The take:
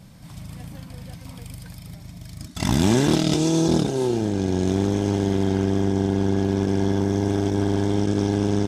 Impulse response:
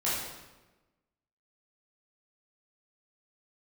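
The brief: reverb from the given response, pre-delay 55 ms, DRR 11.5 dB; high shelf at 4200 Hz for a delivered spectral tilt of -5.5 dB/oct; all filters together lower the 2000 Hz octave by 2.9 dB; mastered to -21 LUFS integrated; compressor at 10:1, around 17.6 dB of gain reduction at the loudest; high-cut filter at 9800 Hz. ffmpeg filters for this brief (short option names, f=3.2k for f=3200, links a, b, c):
-filter_complex "[0:a]lowpass=9.8k,equalizer=f=2k:t=o:g=-5,highshelf=f=4.2k:g=5.5,acompressor=threshold=-33dB:ratio=10,asplit=2[a][b];[1:a]atrim=start_sample=2205,adelay=55[c];[b][c]afir=irnorm=-1:irlink=0,volume=-20.5dB[d];[a][d]amix=inputs=2:normalize=0,volume=16.5dB"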